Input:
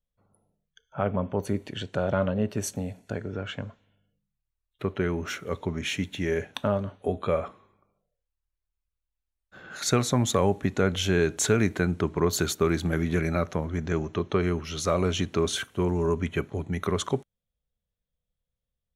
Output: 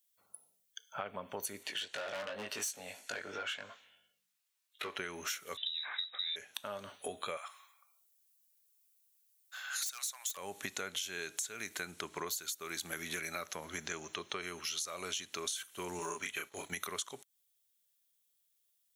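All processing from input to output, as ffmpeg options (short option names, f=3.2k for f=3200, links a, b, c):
-filter_complex "[0:a]asettb=1/sr,asplit=3[a][b][c];[a]atrim=end=1.634[d];[b]atrim=start=1.63:end=4.97,asetpts=PTS-STARTPTS,afade=t=in:d=0.004:c=qsin,afade=t=out:st=3.336:d=0.004:c=qsin,flanger=delay=18.5:depth=2.3:speed=2.8,asoftclip=type=hard:threshold=-22dB,asplit=2[e][f];[f]highpass=f=720:p=1,volume=15dB,asoftclip=type=tanh:threshold=-22dB[g];[e][g]amix=inputs=2:normalize=0,lowpass=f=2.3k:p=1,volume=-6dB[h];[c]atrim=start=4.966[i];[d][h]acrossfade=d=0.004:c1=hsin:c2=qsin[j];[j][i]acrossfade=d=0.004:c1=qsin:c2=hsin,asettb=1/sr,asplit=3[k][l][m];[k]atrim=end=5.574[n];[l]atrim=start=5.57:end=6.36,asetpts=PTS-STARTPTS,afade=t=in:d=0.004:c=qsin,afade=t=out:st=0.786:d=0.004:c=qsin,acompressor=threshold=-29dB:ratio=2:attack=3.2:release=140:knee=1:detection=peak,lowpass=f=3.4k:t=q:w=0.5098,lowpass=f=3.4k:t=q:w=0.6013,lowpass=f=3.4k:t=q:w=0.9,lowpass=f=3.4k:t=q:w=2.563,afreqshift=-4000[o];[m]atrim=start=6.356[p];[n][o]acrossfade=d=0.004:c1=hsin:c2=qsin[q];[q][p]acrossfade=d=0.004:c1=qsin:c2=hsin,asettb=1/sr,asplit=3[r][s][t];[r]atrim=end=7.374[u];[s]atrim=start=7.37:end=10.37,asetpts=PTS-STARTPTS,afade=t=in:d=0.004:c=qsin,afade=t=out:st=2.996:d=0.004:c=qsin,highpass=f=790:w=0.5412,highpass=f=790:w=1.3066,highshelf=f=6.8k:g=5.5,aeval=exprs='0.0794*(abs(mod(val(0)/0.0794+3,4)-2)-1)':c=same[v];[t]atrim=start=10.366[w];[u][v]acrossfade=d=0.004:c1=hsin:c2=qsin[x];[x][w]acrossfade=d=0.004:c1=qsin:c2=hsin,asettb=1/sr,asplit=3[y][z][aa];[y]atrim=end=15.994[ab];[z]atrim=start=15.99:end=16.72,asetpts=PTS-STARTPTS,afade=t=in:d=0.004:c=qsin,afade=t=out:st=0.726:d=0.004:c=qsin,agate=range=-9dB:threshold=-39dB:ratio=16:release=100:detection=peak,equalizer=f=120:w=0.41:g=-6.5,asplit=2[ac][ad];[ad]adelay=30,volume=-2dB[ae];[ac][ae]amix=inputs=2:normalize=0,atrim=end_sample=32193[af];[aa]atrim=start=16.716[ag];[ab][af]acrossfade=d=0.004:c1=hsin:c2=qsin[ah];[ah][ag]acrossfade=d=0.004:c1=qsin:c2=hsin,aderivative,alimiter=level_in=2dB:limit=-24dB:level=0:latency=1:release=391,volume=-2dB,acompressor=threshold=-53dB:ratio=6,volume=16dB"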